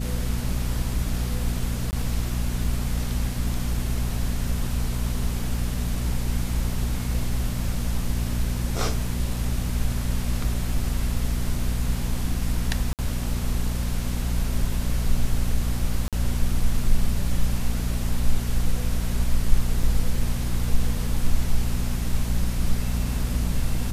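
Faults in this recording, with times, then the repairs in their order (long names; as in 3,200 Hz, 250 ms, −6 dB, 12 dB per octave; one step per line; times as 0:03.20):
mains hum 60 Hz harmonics 4 −27 dBFS
0:01.91–0:01.93: drop-out 19 ms
0:12.93–0:12.99: drop-out 58 ms
0:16.08–0:16.13: drop-out 47 ms
0:19.83: drop-out 2.4 ms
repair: hum removal 60 Hz, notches 4
repair the gap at 0:01.91, 19 ms
repair the gap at 0:12.93, 58 ms
repair the gap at 0:16.08, 47 ms
repair the gap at 0:19.83, 2.4 ms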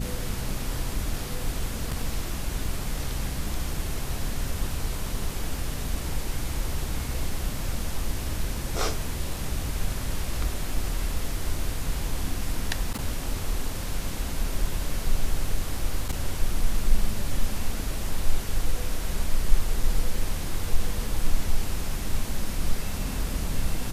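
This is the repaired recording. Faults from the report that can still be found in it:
none of them is left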